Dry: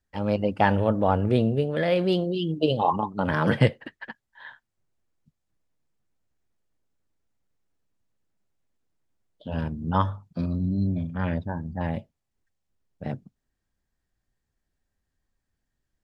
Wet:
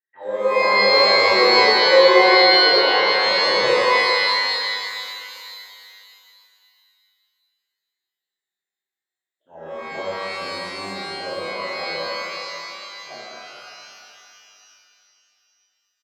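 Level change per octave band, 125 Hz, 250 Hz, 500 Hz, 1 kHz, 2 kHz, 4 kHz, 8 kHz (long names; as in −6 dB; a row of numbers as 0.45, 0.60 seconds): −20.0 dB, −4.5 dB, +9.5 dB, +9.0 dB, +16.5 dB, +22.0 dB, can't be measured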